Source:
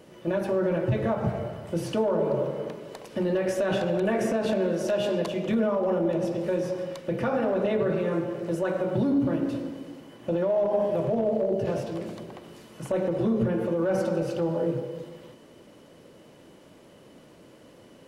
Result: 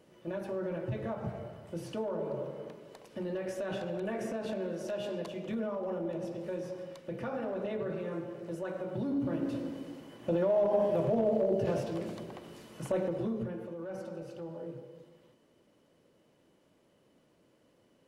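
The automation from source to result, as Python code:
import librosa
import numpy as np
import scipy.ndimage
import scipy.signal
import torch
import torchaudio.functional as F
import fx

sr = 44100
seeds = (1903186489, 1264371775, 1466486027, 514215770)

y = fx.gain(x, sr, db=fx.line((8.96, -10.5), (9.76, -3.0), (12.86, -3.0), (13.7, -15.5)))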